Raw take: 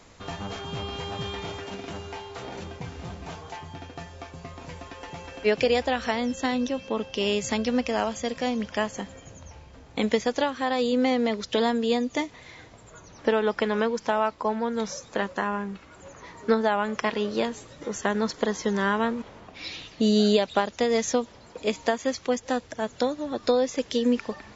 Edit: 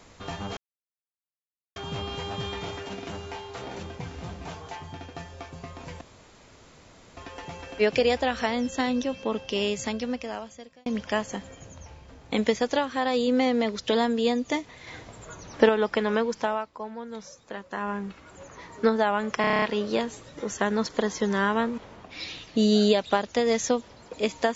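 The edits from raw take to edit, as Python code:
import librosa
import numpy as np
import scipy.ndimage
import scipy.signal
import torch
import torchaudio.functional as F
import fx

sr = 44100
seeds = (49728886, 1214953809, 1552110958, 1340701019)

y = fx.edit(x, sr, fx.insert_silence(at_s=0.57, length_s=1.19),
    fx.insert_room_tone(at_s=4.82, length_s=1.16),
    fx.fade_out_span(start_s=7.07, length_s=1.44),
    fx.clip_gain(start_s=12.52, length_s=0.82, db=5.0),
    fx.fade_down_up(start_s=13.93, length_s=1.78, db=-10.0, fade_s=0.38, curve='qsin'),
    fx.stutter(start_s=17.06, slice_s=0.03, count=8), tone=tone)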